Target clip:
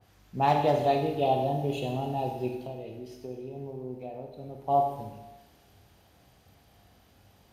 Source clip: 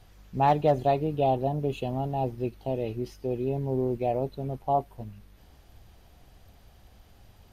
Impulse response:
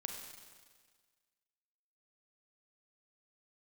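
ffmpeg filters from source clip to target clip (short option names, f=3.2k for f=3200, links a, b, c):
-filter_complex "[0:a]highpass=93,asettb=1/sr,asplit=3[a][b][c];[a]atrim=end=2.484[d];[b]atrim=start=2.48:end=4.62,asetpts=PTS-STARTPTS,afade=t=in:d=0.004:c=qsin,afade=t=out:st=2.136:d=0.004:c=qsin,acompressor=threshold=-35dB:ratio=6[e];[c]atrim=start=4.616[f];[d][e]acrossfade=d=0.004:c1=hsin:c2=qsin[g];[g][f]acrossfade=d=0.004:c1=qsin:c2=hsin[h];[1:a]atrim=start_sample=2205,asetrate=66150,aresample=44100[i];[h][i]afir=irnorm=-1:irlink=0,adynamicequalizer=threshold=0.00501:dfrequency=2100:dqfactor=0.7:tfrequency=2100:tqfactor=0.7:attack=5:release=100:ratio=0.375:range=3:mode=boostabove:tftype=highshelf,volume=4dB"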